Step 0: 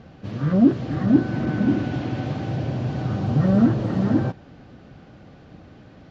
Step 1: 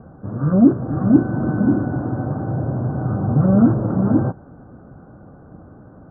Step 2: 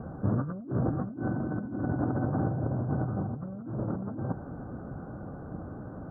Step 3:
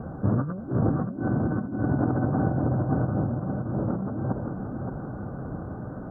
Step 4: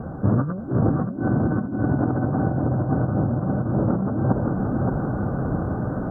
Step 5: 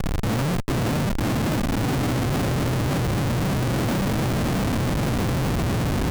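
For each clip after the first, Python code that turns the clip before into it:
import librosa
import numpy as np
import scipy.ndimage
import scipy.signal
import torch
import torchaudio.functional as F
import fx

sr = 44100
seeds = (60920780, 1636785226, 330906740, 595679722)

y1 = scipy.signal.sosfilt(scipy.signal.butter(12, 1500.0, 'lowpass', fs=sr, output='sos'), x)
y1 = y1 * librosa.db_to_amplitude(3.5)
y2 = fx.over_compress(y1, sr, threshold_db=-27.0, ratio=-1.0)
y2 = y2 * librosa.db_to_amplitude(-5.5)
y3 = fx.echo_feedback(y2, sr, ms=572, feedback_pct=45, wet_db=-6.0)
y3 = y3 * librosa.db_to_amplitude(4.0)
y4 = fx.rider(y3, sr, range_db=5, speed_s=0.5)
y4 = y4 * librosa.db_to_amplitude(5.0)
y5 = fx.schmitt(y4, sr, flips_db=-27.0)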